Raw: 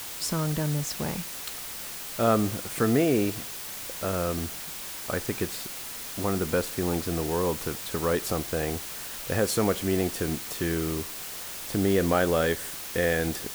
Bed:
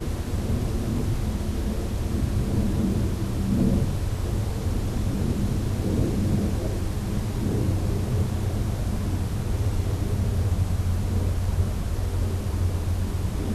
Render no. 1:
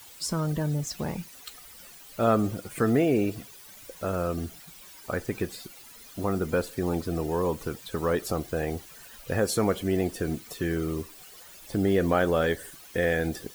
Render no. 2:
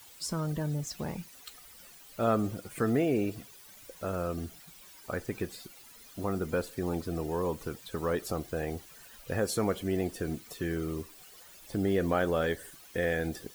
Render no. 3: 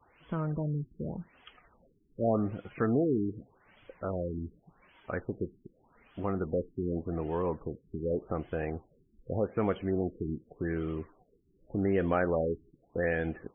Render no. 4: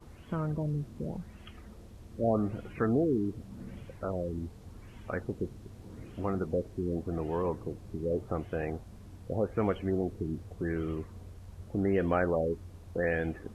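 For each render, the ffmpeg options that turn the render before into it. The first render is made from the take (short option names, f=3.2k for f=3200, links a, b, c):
-af "afftdn=nr=14:nf=-38"
-af "volume=-4.5dB"
-af "aeval=exprs='val(0)*gte(abs(val(0)),0.00188)':c=same,afftfilt=real='re*lt(b*sr/1024,410*pow(3500/410,0.5+0.5*sin(2*PI*0.85*pts/sr)))':imag='im*lt(b*sr/1024,410*pow(3500/410,0.5+0.5*sin(2*PI*0.85*pts/sr)))':win_size=1024:overlap=0.75"
-filter_complex "[1:a]volume=-23dB[a];[0:a][a]amix=inputs=2:normalize=0"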